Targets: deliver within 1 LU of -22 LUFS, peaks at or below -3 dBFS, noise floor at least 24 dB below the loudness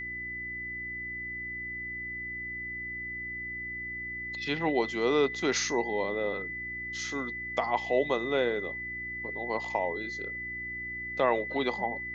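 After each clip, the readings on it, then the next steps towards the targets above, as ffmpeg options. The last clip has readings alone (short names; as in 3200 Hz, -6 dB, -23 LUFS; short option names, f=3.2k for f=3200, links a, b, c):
hum 60 Hz; harmonics up to 360 Hz; hum level -47 dBFS; steady tone 2000 Hz; tone level -35 dBFS; loudness -31.5 LUFS; peak -13.5 dBFS; loudness target -22.0 LUFS
-> -af "bandreject=f=60:t=h:w=4,bandreject=f=120:t=h:w=4,bandreject=f=180:t=h:w=4,bandreject=f=240:t=h:w=4,bandreject=f=300:t=h:w=4,bandreject=f=360:t=h:w=4"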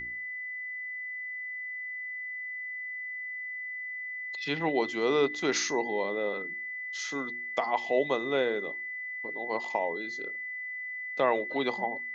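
hum none; steady tone 2000 Hz; tone level -35 dBFS
-> -af "bandreject=f=2k:w=30"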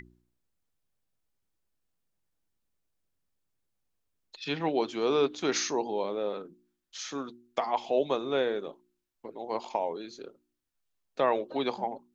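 steady tone none; loudness -31.0 LUFS; peak -14.0 dBFS; loudness target -22.0 LUFS
-> -af "volume=9dB"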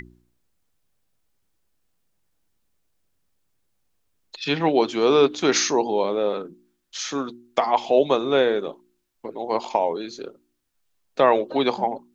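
loudness -22.0 LUFS; peak -5.0 dBFS; noise floor -71 dBFS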